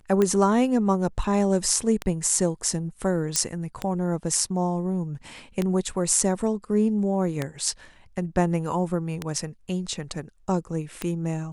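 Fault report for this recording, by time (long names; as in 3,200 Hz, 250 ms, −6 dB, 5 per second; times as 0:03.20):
scratch tick 33 1/3 rpm −11 dBFS
0:03.36: click −7 dBFS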